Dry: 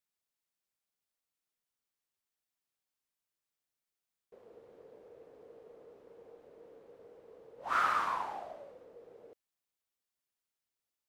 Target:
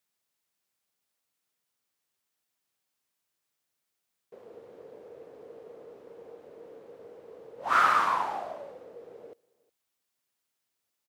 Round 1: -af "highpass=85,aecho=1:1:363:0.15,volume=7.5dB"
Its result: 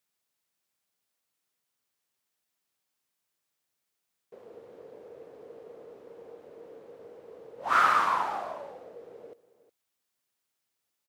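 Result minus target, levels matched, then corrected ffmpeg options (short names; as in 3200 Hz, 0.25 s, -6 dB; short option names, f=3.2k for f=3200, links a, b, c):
echo-to-direct +8.5 dB
-af "highpass=85,aecho=1:1:363:0.0562,volume=7.5dB"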